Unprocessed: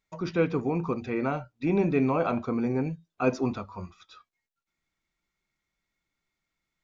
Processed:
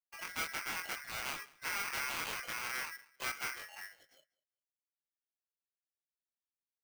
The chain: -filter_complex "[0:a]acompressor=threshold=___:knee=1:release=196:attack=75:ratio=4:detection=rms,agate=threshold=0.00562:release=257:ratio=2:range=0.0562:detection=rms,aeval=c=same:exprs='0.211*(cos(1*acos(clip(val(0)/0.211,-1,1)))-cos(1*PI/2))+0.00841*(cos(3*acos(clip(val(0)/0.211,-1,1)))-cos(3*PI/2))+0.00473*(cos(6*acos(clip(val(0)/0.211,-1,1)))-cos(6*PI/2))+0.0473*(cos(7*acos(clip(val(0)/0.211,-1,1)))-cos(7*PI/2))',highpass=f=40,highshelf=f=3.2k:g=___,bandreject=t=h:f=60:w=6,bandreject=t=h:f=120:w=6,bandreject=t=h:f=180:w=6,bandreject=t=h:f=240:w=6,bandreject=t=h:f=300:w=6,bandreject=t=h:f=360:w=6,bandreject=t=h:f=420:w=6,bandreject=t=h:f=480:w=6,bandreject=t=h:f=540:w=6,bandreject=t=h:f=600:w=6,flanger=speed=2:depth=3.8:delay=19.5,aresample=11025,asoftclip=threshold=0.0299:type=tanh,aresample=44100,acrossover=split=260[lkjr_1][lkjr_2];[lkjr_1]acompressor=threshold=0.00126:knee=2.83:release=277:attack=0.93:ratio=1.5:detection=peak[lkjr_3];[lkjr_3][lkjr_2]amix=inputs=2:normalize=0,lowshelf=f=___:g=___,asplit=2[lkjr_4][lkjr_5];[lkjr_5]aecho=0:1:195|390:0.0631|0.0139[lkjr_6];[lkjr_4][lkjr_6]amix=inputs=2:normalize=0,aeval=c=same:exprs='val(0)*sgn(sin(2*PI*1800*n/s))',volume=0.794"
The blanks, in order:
0.0562, -6, 210, 7